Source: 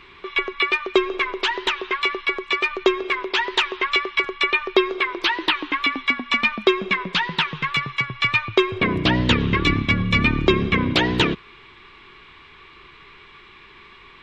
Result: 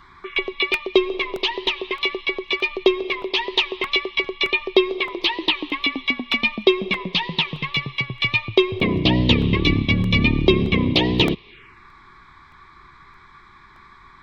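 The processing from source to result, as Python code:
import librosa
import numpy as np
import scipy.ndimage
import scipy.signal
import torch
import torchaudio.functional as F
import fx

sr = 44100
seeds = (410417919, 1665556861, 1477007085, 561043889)

y = fx.env_phaser(x, sr, low_hz=420.0, high_hz=1500.0, full_db=-24.5)
y = fx.buffer_crackle(y, sr, first_s=0.74, period_s=0.62, block=64, kind='repeat')
y = y * librosa.db_to_amplitude(2.5)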